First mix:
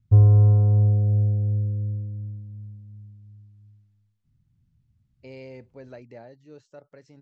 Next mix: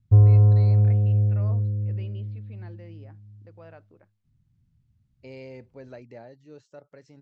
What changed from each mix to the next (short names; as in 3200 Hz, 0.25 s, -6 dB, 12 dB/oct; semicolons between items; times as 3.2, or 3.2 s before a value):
first voice: unmuted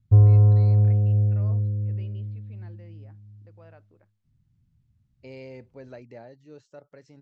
first voice -4.5 dB